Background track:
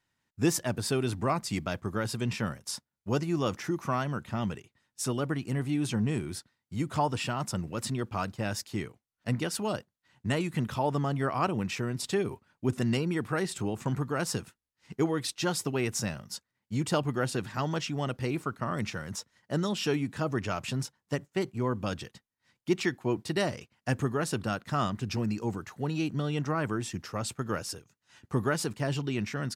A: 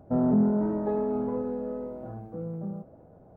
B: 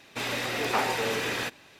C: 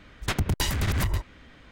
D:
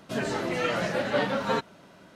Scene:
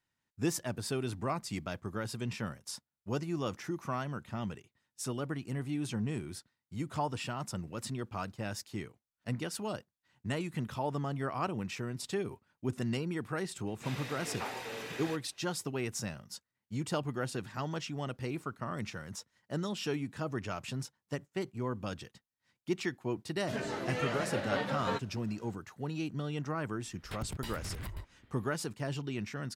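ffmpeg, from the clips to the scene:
-filter_complex "[0:a]volume=-6dB[a];[3:a]equalizer=f=6.3k:t=o:w=0.26:g=-13[b];[2:a]atrim=end=1.79,asetpts=PTS-STARTPTS,volume=-13dB,afade=t=in:d=0.004:c=hsin,afade=t=out:st=1.786:d=0.004:c=hsin,adelay=13670[c];[4:a]atrim=end=2.15,asetpts=PTS-STARTPTS,volume=-7.5dB,afade=t=in:d=0.004:c=hsin,afade=t=out:st=2.146:d=0.004:c=hsin,adelay=23380[d];[b]atrim=end=1.71,asetpts=PTS-STARTPTS,volume=-16dB,afade=t=in:d=0.004:c=hsin,afade=t=out:st=1.706:d=0.004:c=hsin,adelay=26830[e];[a][c][d][e]amix=inputs=4:normalize=0"

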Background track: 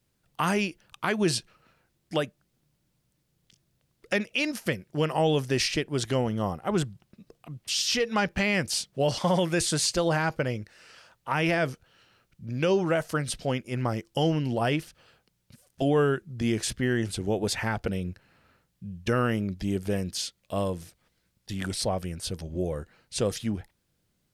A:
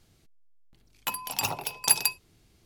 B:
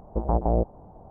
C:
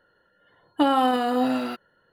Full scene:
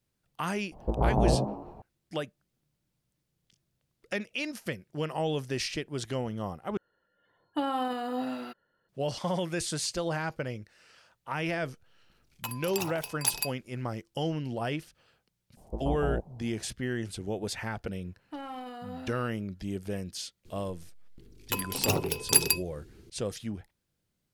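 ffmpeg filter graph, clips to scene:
-filter_complex "[2:a]asplit=2[a][b];[3:a]asplit=2[c][d];[1:a]asplit=2[e][f];[0:a]volume=-6.5dB[g];[a]asplit=6[h][i][j][k][l][m];[i]adelay=91,afreqshift=74,volume=-5dB[n];[j]adelay=182,afreqshift=148,volume=-12.3dB[o];[k]adelay=273,afreqshift=222,volume=-19.7dB[p];[l]adelay=364,afreqshift=296,volume=-27dB[q];[m]adelay=455,afreqshift=370,volume=-34.3dB[r];[h][n][o][p][q][r]amix=inputs=6:normalize=0[s];[b]lowpass=1.1k[t];[d]asoftclip=type=tanh:threshold=-15.5dB[u];[f]lowshelf=f=540:t=q:w=3:g=8.5[v];[g]asplit=2[w][x];[w]atrim=end=6.774[y];[c]atrim=end=2.12,asetpts=PTS-STARTPTS,volume=-10dB[z];[x]atrim=start=8.886[aa];[s]atrim=end=1.1,asetpts=PTS-STARTPTS,volume=-2.5dB,afade=t=in:d=0.004:c=hsin,afade=t=out:st=1.096:d=0.004:c=hsin,adelay=720[ab];[e]atrim=end=2.65,asetpts=PTS-STARTPTS,volume=-6.5dB,afade=t=in:d=0.004:c=hsin,afade=t=out:st=2.646:d=0.004:c=hsin,adelay=11370[ac];[t]atrim=end=1.1,asetpts=PTS-STARTPTS,volume=-8.5dB,afade=t=in:d=0.004:c=hsin,afade=t=out:st=1.096:d=0.004:c=hsin,adelay=15570[ad];[u]atrim=end=2.12,asetpts=PTS-STARTPTS,volume=-17.5dB,afade=t=in:d=0.004:c=hsin,afade=t=out:st=2.116:d=0.004:c=hsin,adelay=17530[ae];[v]atrim=end=2.65,asetpts=PTS-STARTPTS,afade=t=in:d=0.004:c=hsin,afade=t=out:st=2.646:d=0.004:c=hsin,adelay=20450[af];[y][z]acrossfade=d=0.004:c1=hsin:c2=hsin[ag];[ag][aa]acrossfade=d=0.004:c1=hsin:c2=hsin[ah];[ah][ab][ac][ad][ae][af]amix=inputs=6:normalize=0"

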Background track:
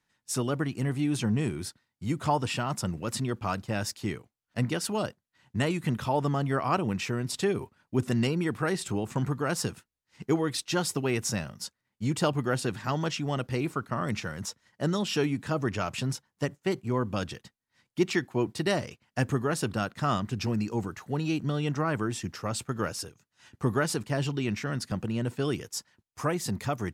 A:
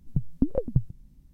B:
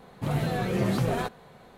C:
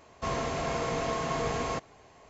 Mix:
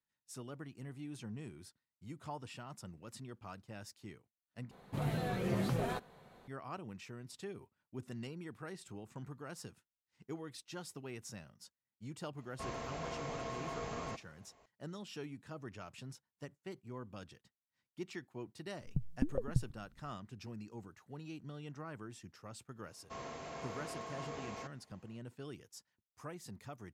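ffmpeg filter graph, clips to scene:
-filter_complex "[3:a]asplit=2[a][b];[0:a]volume=-18.5dB[c];[b]highpass=f=130:p=1[d];[c]asplit=2[e][f];[e]atrim=end=4.714[g];[2:a]atrim=end=1.77,asetpts=PTS-STARTPTS,volume=-8.5dB[h];[f]atrim=start=6.476[i];[a]atrim=end=2.29,asetpts=PTS-STARTPTS,volume=-11.5dB,afade=t=in:d=0.004:c=hsin,afade=t=out:st=2.286:d=0.004:c=hsin,adelay=12370[j];[1:a]atrim=end=1.33,asetpts=PTS-STARTPTS,volume=-9.5dB,afade=t=in:d=0.004:c=hsin,afade=t=out:st=1.326:d=0.004:c=hsin,adelay=18800[k];[d]atrim=end=2.29,asetpts=PTS-STARTPTS,volume=-14dB,afade=t=in:d=0.004:c=hsin,afade=t=out:st=2.286:d=0.004:c=hsin,adelay=22880[l];[g][h]acrossfade=d=0.004:c1=hsin:c2=hsin[m];[m][i]acrossfade=d=0.004:c1=hsin:c2=hsin[n];[n][j][k][l]amix=inputs=4:normalize=0"

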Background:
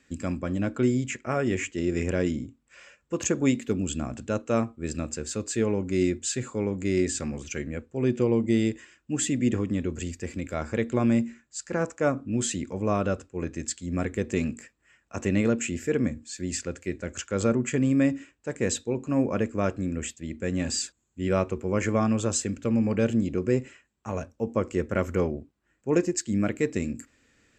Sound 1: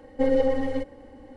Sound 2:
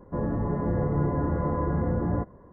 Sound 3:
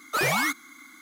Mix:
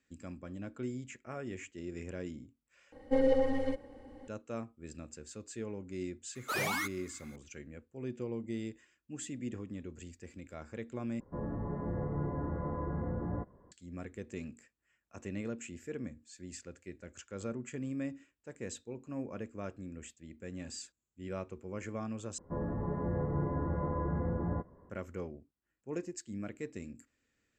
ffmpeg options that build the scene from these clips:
-filter_complex "[2:a]asplit=2[a][b];[0:a]volume=-15.5dB[c];[b]asplit=2[d][e];[e]adelay=12,volume=-11dB[f];[d][f]amix=inputs=2:normalize=0[g];[c]asplit=4[h][i][j][k];[h]atrim=end=2.924[l];[1:a]atrim=end=1.36,asetpts=PTS-STARTPTS,volume=-5.5dB[m];[i]atrim=start=4.276:end=11.204[n];[a]atrim=end=2.52,asetpts=PTS-STARTPTS,volume=-10dB[o];[j]atrim=start=13.716:end=22.384[p];[g]atrim=end=2.52,asetpts=PTS-STARTPTS,volume=-8.5dB[q];[k]atrim=start=24.896[r];[3:a]atrim=end=1.01,asetpts=PTS-STARTPTS,volume=-9.5dB,afade=t=in:d=0.004:c=hsin,afade=t=out:st=1.006:d=0.004:c=hsin,adelay=6350[s];[l][m]acrossfade=d=0.004:c1=hsin:c2=hsin[t];[t][n]acrossfade=d=0.004:c1=hsin:c2=hsin[u];[u][o]acrossfade=d=0.004:c1=hsin:c2=hsin[v];[v][p]acrossfade=d=0.004:c1=hsin:c2=hsin[w];[w][q]acrossfade=d=0.004:c1=hsin:c2=hsin[x];[x][r]acrossfade=d=0.004:c1=hsin:c2=hsin[y];[y][s]amix=inputs=2:normalize=0"

